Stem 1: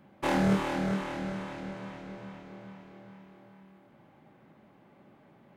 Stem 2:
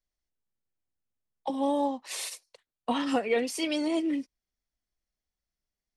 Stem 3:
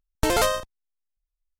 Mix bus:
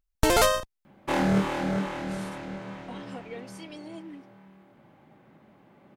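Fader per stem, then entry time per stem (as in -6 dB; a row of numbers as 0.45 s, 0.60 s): +2.0 dB, -14.5 dB, +0.5 dB; 0.85 s, 0.00 s, 0.00 s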